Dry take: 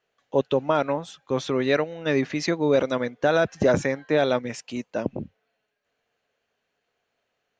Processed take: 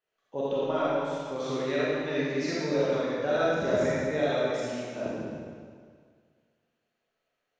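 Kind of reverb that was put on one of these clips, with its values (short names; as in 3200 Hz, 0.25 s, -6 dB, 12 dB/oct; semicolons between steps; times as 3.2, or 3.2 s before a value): digital reverb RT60 1.9 s, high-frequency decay 0.95×, pre-delay 5 ms, DRR -8.5 dB; gain -13.5 dB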